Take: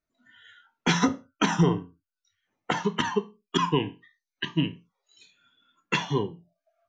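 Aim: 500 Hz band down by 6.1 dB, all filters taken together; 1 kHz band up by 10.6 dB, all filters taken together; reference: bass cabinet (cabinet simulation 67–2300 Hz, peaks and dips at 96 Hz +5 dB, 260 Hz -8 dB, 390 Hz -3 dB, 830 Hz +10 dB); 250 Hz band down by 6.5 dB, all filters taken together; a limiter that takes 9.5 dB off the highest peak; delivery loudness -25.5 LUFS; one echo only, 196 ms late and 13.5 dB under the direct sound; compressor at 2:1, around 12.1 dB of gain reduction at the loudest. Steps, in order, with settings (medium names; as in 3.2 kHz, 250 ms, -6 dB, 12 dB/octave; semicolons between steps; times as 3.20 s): peaking EQ 250 Hz -6 dB; peaking EQ 500 Hz -5 dB; peaking EQ 1 kHz +8.5 dB; compression 2:1, threshold -40 dBFS; peak limiter -26 dBFS; cabinet simulation 67–2300 Hz, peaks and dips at 96 Hz +5 dB, 260 Hz -8 dB, 390 Hz -3 dB, 830 Hz +10 dB; delay 196 ms -13.5 dB; trim +12 dB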